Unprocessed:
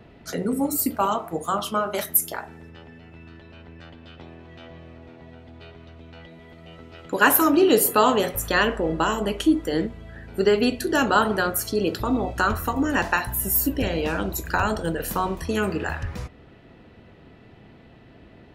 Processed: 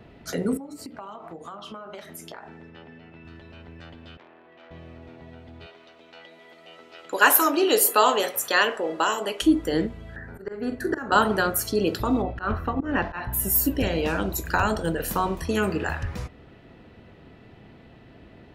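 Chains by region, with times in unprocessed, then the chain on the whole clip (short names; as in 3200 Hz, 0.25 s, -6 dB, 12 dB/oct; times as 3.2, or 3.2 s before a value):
0.57–3.25 BPF 130–4100 Hz + compressor 12:1, threshold -35 dBFS
4.17–4.71 BPF 400–3200 Hz + air absorption 240 m + core saturation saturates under 1800 Hz
5.66–9.42 HPF 430 Hz + bell 5700 Hz +3 dB 1.9 oct
10.16–11.12 resonant high shelf 2200 Hz -8.5 dB, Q 3 + auto swell 0.434 s + doubler 44 ms -12.5 dB
12.22–13.33 notch 940 Hz, Q 26 + auto swell 0.115 s + air absorption 340 m
whole clip: dry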